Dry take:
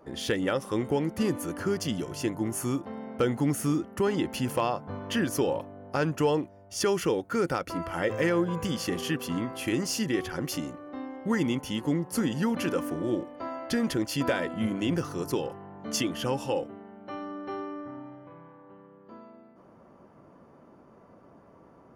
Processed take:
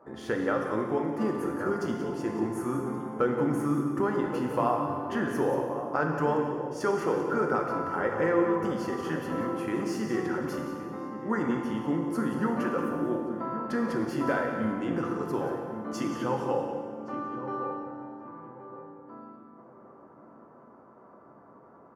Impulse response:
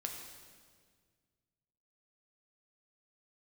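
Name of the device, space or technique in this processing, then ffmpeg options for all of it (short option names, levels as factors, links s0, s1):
PA in a hall: -filter_complex "[0:a]highpass=f=180:p=1,equalizer=f=3300:t=o:w=2.8:g=4,aecho=1:1:181:0.282[s0];[1:a]atrim=start_sample=2205[s1];[s0][s1]afir=irnorm=-1:irlink=0,highshelf=f=2000:t=q:w=1.5:g=-13.5,asettb=1/sr,asplit=3[s2][s3][s4];[s2]atrim=end=0.984[s5];[s3]atrim=start=0.98:end=1.38,asetpts=PTS-STARTPTS,afade=t=in:d=0.004:c=qsin,afade=t=out:st=0.396:d=0.004:c=qsin,highpass=160[s6];[s4]atrim=start=1.376[s7];[s5][s6]acrossfade=d=0.004:c1=hsin:c2=qsin[s8];[s8][s7]acrossfade=d=0.004:c1=qsin:c2=hsin,asplit=2[s9][s10];[s10]adelay=1122,lowpass=f=860:p=1,volume=0.355,asplit=2[s11][s12];[s12]adelay=1122,lowpass=f=860:p=1,volume=0.33,asplit=2[s13][s14];[s14]adelay=1122,lowpass=f=860:p=1,volume=0.33,asplit=2[s15][s16];[s16]adelay=1122,lowpass=f=860:p=1,volume=0.33[s17];[s9][s11][s13][s15][s17]amix=inputs=5:normalize=0"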